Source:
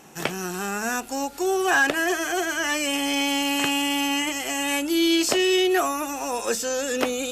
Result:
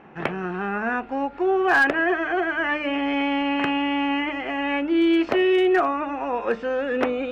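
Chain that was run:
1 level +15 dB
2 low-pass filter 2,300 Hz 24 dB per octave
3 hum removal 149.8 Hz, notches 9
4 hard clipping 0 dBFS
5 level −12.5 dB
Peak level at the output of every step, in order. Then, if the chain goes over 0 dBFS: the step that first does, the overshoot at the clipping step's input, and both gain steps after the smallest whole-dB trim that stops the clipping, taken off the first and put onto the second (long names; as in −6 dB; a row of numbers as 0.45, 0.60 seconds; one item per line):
+6.0, +5.0, +4.5, 0.0, −12.5 dBFS
step 1, 4.5 dB
step 1 +10 dB, step 5 −7.5 dB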